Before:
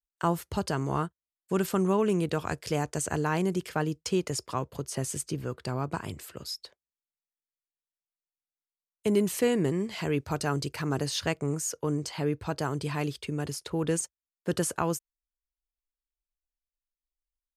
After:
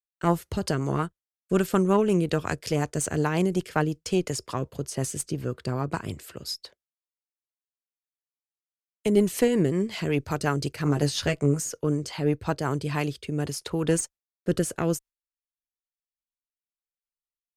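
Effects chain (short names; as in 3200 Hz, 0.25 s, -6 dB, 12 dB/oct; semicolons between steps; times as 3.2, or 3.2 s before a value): gate with hold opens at -51 dBFS; added harmonics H 2 -14 dB, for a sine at -13.5 dBFS; rotary speaker horn 5.5 Hz, later 0.65 Hz, at 12.45; 10.84–11.6 doubler 14 ms -5 dB; gain +4.5 dB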